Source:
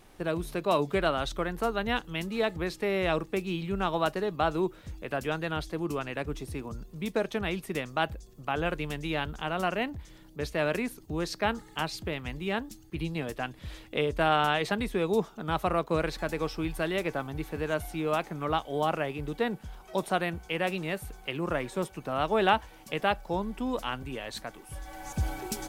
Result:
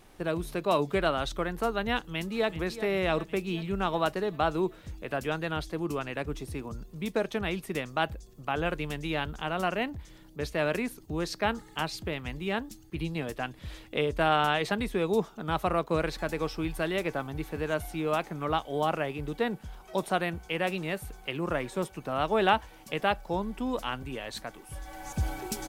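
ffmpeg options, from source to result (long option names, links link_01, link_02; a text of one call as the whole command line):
ffmpeg -i in.wav -filter_complex "[0:a]asplit=2[link_01][link_02];[link_02]afade=type=in:start_time=2.11:duration=0.01,afade=type=out:start_time=2.6:duration=0.01,aecho=0:1:380|760|1140|1520|1900|2280|2660|3040:0.223872|0.145517|0.094586|0.0614809|0.0399626|0.0259757|0.0168842|0.0109747[link_03];[link_01][link_03]amix=inputs=2:normalize=0" out.wav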